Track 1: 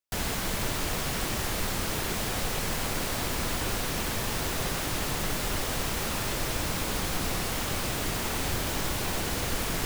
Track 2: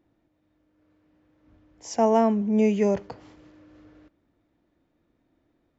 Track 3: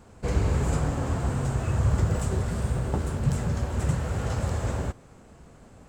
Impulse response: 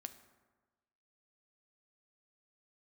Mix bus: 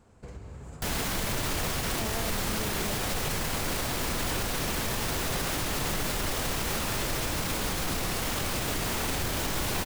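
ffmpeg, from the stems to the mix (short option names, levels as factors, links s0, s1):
-filter_complex "[0:a]adelay=700,volume=1.26[s0];[1:a]volume=0.141[s1];[2:a]acompressor=threshold=0.02:ratio=4,volume=0.299,asplit=2[s2][s3];[s3]volume=0.596[s4];[3:a]atrim=start_sample=2205[s5];[s4][s5]afir=irnorm=-1:irlink=0[s6];[s0][s1][s2][s6]amix=inputs=4:normalize=0,alimiter=limit=0.0944:level=0:latency=1:release=20"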